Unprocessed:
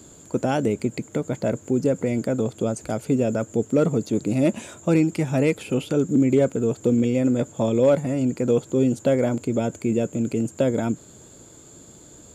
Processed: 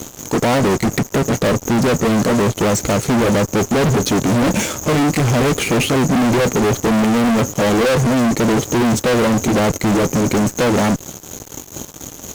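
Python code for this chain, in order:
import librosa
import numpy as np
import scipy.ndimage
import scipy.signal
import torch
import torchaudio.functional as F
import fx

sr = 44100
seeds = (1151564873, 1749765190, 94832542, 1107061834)

y = fx.pitch_heads(x, sr, semitones=-1.5)
y = fx.fuzz(y, sr, gain_db=38.0, gate_db=-46.0)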